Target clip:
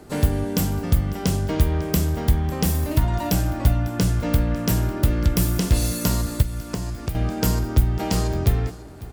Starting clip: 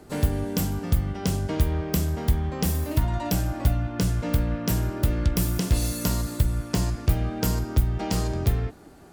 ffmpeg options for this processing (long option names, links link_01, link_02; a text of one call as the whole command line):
ffmpeg -i in.wav -filter_complex "[0:a]aecho=1:1:549:0.119,asettb=1/sr,asplit=3[link_01][link_02][link_03];[link_01]atrim=end=6.424[link_04];[link_02]atrim=start=6.42:end=7.15,asetpts=PTS-STARTPTS,afade=type=in:duration=0.004:curve=qsin,afade=type=out:start_time=0.726:duration=0.004:curve=qsin,acrossover=split=2100|5100[link_05][link_06][link_07];[link_05]acompressor=threshold=-29dB:ratio=4[link_08];[link_06]acompressor=threshold=-50dB:ratio=4[link_09];[link_07]acompressor=threshold=-44dB:ratio=4[link_10];[link_08][link_09][link_10]amix=inputs=3:normalize=0[link_11];[link_03]atrim=start=7.146[link_12];[link_04][link_11]acrossfade=duration=0.004:curve1=hsin:curve2=qsin[link_13];[link_13][link_12]acrossfade=duration=0.004:curve1=qsin:curve2=hsin,volume=3.5dB" out.wav